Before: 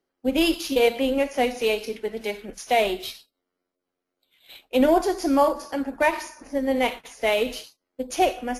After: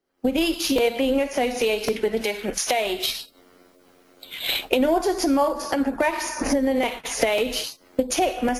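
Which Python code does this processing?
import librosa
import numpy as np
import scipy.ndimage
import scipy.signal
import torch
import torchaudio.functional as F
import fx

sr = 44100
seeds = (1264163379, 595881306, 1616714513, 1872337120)

y = fx.recorder_agc(x, sr, target_db=-12.0, rise_db_per_s=67.0, max_gain_db=30)
y = fx.low_shelf(y, sr, hz=400.0, db=-7.5, at=(2.23, 3.09))
y = fx.buffer_crackle(y, sr, first_s=0.78, period_s=0.55, block=128, kind='repeat')
y = F.gain(torch.from_numpy(y), -2.0).numpy()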